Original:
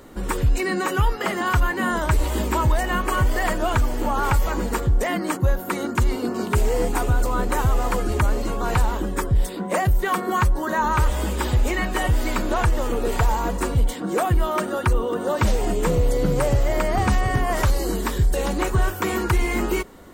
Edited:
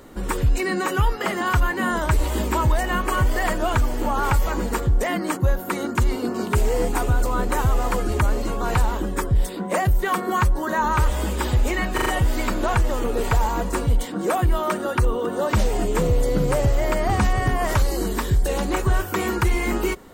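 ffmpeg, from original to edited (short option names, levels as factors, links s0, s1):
-filter_complex "[0:a]asplit=4[s0][s1][s2][s3];[s0]atrim=end=11.982[s4];[s1]atrim=start=11.938:end=11.982[s5];[s2]atrim=start=11.938:end=11.982[s6];[s3]atrim=start=11.938[s7];[s4][s5]acrossfade=d=0.004:c1=hsin:c2=hsin[s8];[s8][s6]acrossfade=d=0.004:c1=hsin:c2=hsin[s9];[s9][s7]acrossfade=d=0.004:c1=hsin:c2=hsin"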